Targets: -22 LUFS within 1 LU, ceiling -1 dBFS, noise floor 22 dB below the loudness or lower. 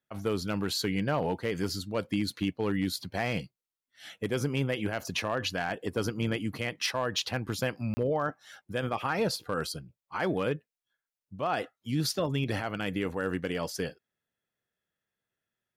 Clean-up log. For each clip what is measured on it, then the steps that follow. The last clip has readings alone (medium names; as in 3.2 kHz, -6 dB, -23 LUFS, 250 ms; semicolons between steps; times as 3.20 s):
clipped samples 0.3%; clipping level -20.0 dBFS; dropouts 1; longest dropout 30 ms; loudness -31.5 LUFS; peak level -20.0 dBFS; loudness target -22.0 LUFS
-> clip repair -20 dBFS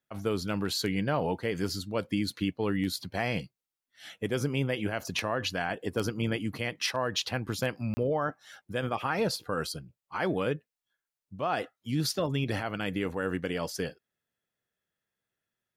clipped samples 0.0%; dropouts 1; longest dropout 30 ms
-> interpolate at 7.94 s, 30 ms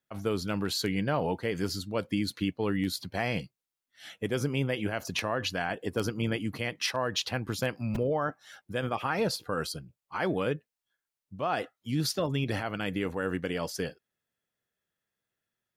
dropouts 0; loudness -31.5 LUFS; peak level -11.5 dBFS; loudness target -22.0 LUFS
-> trim +9.5 dB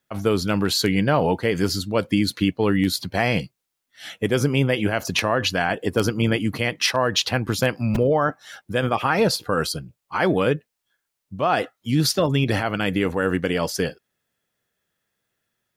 loudness -22.0 LUFS; peak level -2.0 dBFS; noise floor -80 dBFS